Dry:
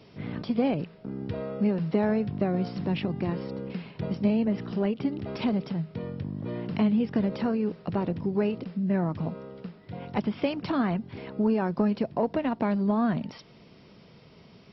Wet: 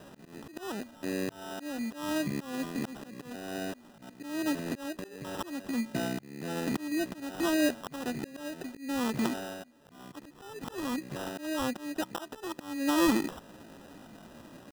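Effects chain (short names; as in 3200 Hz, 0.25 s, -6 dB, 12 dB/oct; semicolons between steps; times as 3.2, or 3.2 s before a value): auto swell 0.559 s; pitch shift +6 st; sample-and-hold 20×; gain +3 dB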